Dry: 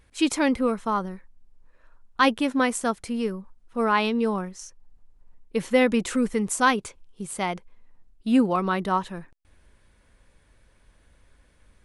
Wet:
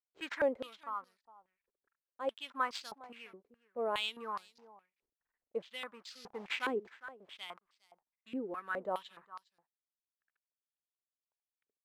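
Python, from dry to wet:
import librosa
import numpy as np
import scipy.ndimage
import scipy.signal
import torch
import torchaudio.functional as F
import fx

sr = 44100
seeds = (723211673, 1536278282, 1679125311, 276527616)

p1 = fx.delta_hold(x, sr, step_db=-32.0, at=(6.15, 6.7))
p2 = np.sign(p1) * np.maximum(np.abs(p1) - 10.0 ** (-43.5 / 20.0), 0.0)
p3 = p1 + (p2 * librosa.db_to_amplitude(-10.0))
p4 = fx.tremolo_shape(p3, sr, shape='triangle', hz=0.8, depth_pct=70)
p5 = np.sign(p4) * np.maximum(np.abs(p4) - 10.0 ** (-50.5 / 20.0), 0.0)
p6 = p5 + fx.echo_single(p5, sr, ms=409, db=-19.0, dry=0)
p7 = np.repeat(p6[::4], 4)[:len(p6)]
p8 = fx.filter_held_bandpass(p7, sr, hz=4.8, low_hz=410.0, high_hz=4700.0)
y = p8 * librosa.db_to_amplitude(-2.0)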